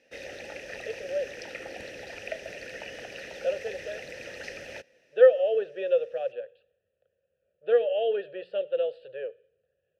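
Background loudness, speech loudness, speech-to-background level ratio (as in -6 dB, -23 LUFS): -40.0 LUFS, -26.5 LUFS, 13.5 dB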